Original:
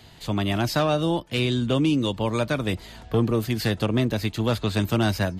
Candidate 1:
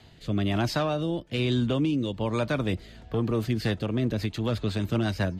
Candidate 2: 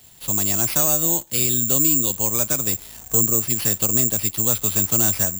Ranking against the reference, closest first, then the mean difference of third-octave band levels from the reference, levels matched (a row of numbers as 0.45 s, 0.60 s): 1, 2; 3.0 dB, 10.5 dB